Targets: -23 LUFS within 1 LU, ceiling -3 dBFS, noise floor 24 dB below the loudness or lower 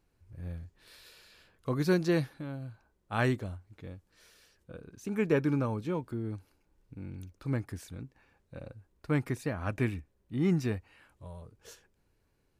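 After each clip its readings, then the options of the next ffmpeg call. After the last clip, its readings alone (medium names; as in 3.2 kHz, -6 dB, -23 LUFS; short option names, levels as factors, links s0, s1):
loudness -33.0 LUFS; peak level -14.0 dBFS; loudness target -23.0 LUFS
-> -af "volume=3.16"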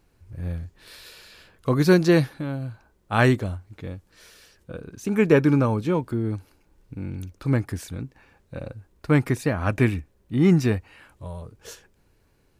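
loudness -23.0 LUFS; peak level -4.0 dBFS; noise floor -64 dBFS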